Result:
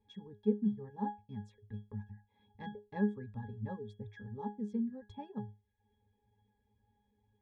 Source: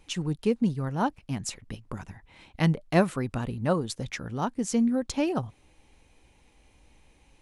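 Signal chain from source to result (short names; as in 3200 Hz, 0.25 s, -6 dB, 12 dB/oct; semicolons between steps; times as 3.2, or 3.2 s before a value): reverb removal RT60 0.64 s; octave resonator G#, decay 0.25 s; gain +2.5 dB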